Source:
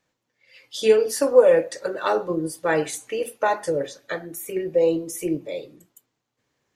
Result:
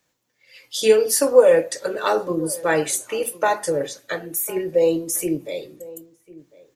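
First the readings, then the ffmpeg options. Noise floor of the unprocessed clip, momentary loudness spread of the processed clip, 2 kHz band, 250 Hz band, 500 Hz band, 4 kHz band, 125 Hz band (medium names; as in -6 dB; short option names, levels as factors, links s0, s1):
-79 dBFS, 15 LU, +2.5 dB, +1.5 dB, +1.5 dB, +5.0 dB, +1.5 dB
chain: -filter_complex "[0:a]acrossover=split=110[s0][s1];[s1]crystalizer=i=1.5:c=0[s2];[s0][s2]amix=inputs=2:normalize=0,asplit=2[s3][s4];[s4]adelay=1050,volume=0.1,highshelf=f=4000:g=-23.6[s5];[s3][s5]amix=inputs=2:normalize=0,volume=1.19"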